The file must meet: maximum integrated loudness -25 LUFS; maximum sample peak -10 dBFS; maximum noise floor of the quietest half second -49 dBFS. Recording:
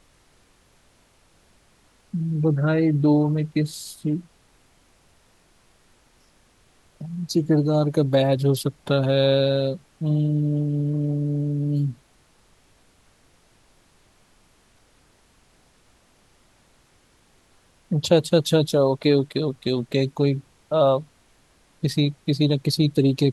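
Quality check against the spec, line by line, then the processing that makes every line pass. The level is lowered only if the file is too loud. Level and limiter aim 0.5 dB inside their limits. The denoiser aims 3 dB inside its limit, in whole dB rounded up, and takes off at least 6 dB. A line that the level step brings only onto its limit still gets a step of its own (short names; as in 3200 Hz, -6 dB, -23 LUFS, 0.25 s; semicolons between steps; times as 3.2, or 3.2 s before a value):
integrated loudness -22.0 LUFS: fail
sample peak -4.0 dBFS: fail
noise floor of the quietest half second -59 dBFS: OK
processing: gain -3.5 dB; limiter -10.5 dBFS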